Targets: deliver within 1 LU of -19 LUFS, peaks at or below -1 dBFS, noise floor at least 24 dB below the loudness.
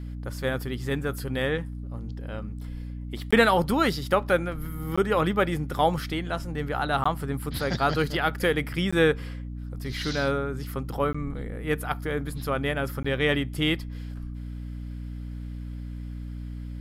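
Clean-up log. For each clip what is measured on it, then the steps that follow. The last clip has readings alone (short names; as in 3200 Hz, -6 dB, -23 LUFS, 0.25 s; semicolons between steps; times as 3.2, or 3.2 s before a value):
dropouts 6; longest dropout 15 ms; hum 60 Hz; harmonics up to 300 Hz; hum level -33 dBFS; loudness -27.0 LUFS; peak -6.5 dBFS; loudness target -19.0 LUFS
-> interpolate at 3.31/4.96/7.04/8.91/11.13/13.03, 15 ms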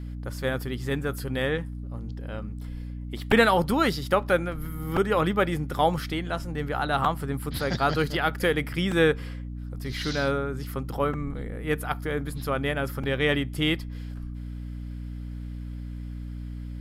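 dropouts 0; hum 60 Hz; harmonics up to 300 Hz; hum level -33 dBFS
-> notches 60/120/180/240/300 Hz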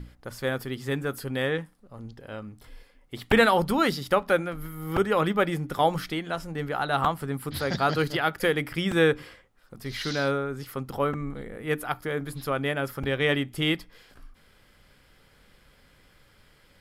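hum none; loudness -27.0 LUFS; peak -7.0 dBFS; loudness target -19.0 LUFS
-> gain +8 dB; limiter -1 dBFS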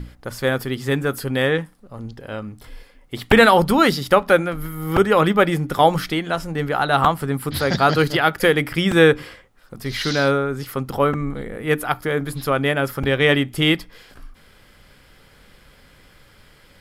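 loudness -19.0 LUFS; peak -1.0 dBFS; noise floor -52 dBFS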